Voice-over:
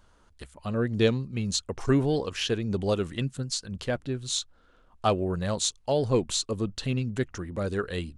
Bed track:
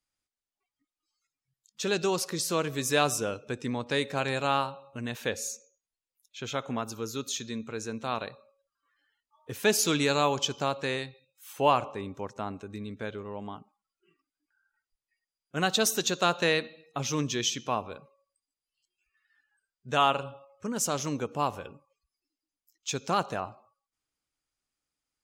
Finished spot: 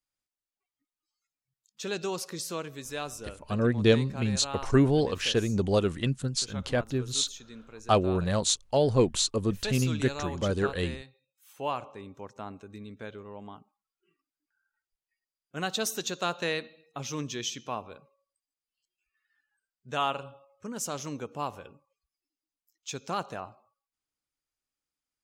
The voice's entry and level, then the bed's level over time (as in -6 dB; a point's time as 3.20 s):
2.85 s, +1.5 dB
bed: 2.43 s -5 dB
2.89 s -11 dB
11.19 s -11 dB
12.47 s -5 dB